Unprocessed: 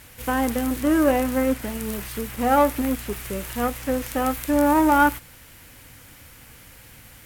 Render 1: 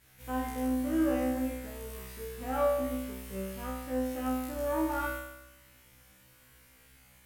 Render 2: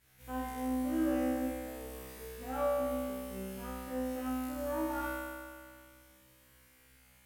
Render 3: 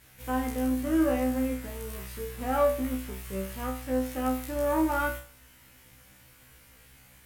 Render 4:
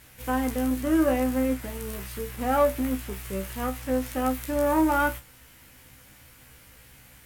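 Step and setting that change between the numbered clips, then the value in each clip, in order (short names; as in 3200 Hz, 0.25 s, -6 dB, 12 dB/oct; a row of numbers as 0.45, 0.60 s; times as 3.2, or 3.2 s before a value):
resonator, decay: 0.97, 2.1, 0.4, 0.17 s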